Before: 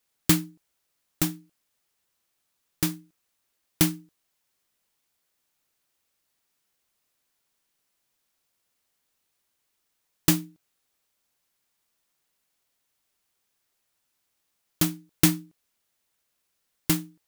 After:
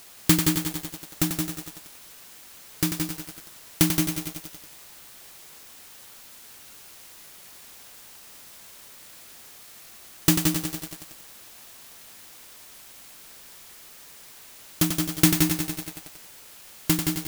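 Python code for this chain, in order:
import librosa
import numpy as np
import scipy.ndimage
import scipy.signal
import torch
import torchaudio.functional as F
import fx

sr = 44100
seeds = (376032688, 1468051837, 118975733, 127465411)

p1 = fx.quant_dither(x, sr, seeds[0], bits=6, dither='triangular')
p2 = x + (p1 * 10.0 ** (-11.0 / 20.0))
p3 = p2 + 10.0 ** (-6.0 / 20.0) * np.pad(p2, (int(171 * sr / 1000.0), 0))[:len(p2)]
p4 = fx.echo_crushed(p3, sr, ms=92, feedback_pct=80, bits=6, wet_db=-6.0)
y = p4 * 10.0 ** (-1.0 / 20.0)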